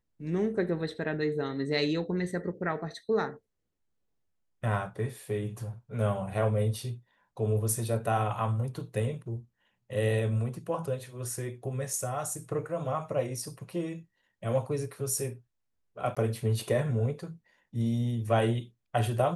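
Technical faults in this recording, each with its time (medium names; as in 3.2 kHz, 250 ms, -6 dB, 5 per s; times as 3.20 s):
16.15–16.17 s: dropout 16 ms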